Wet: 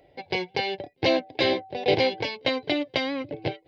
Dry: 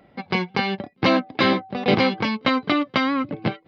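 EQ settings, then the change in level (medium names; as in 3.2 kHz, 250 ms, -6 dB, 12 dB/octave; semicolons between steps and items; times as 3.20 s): static phaser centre 510 Hz, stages 4; 0.0 dB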